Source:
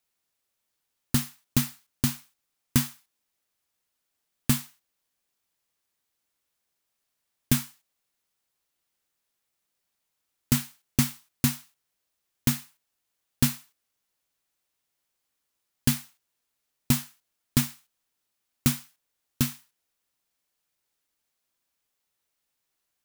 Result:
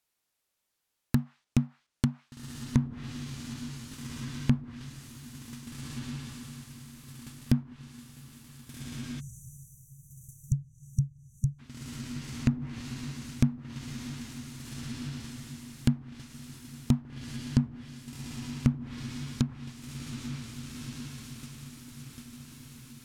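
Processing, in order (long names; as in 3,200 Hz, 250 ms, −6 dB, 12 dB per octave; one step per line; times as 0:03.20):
feedback delay with all-pass diffusion 1,595 ms, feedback 47%, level −8 dB
time-frequency box erased 0:09.20–0:11.59, 210–5,800 Hz
treble cut that deepens with the level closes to 540 Hz, closed at −22.5 dBFS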